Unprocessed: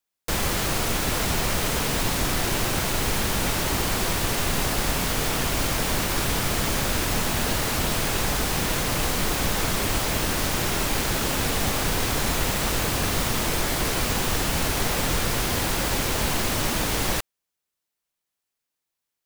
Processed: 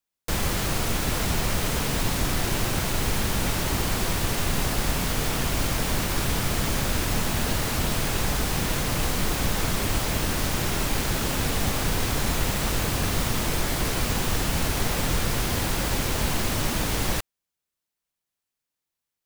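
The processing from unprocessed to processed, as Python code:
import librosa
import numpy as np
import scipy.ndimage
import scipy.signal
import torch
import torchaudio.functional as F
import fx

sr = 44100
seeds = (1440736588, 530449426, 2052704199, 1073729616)

y = fx.bass_treble(x, sr, bass_db=4, treble_db=0)
y = F.gain(torch.from_numpy(y), -2.5).numpy()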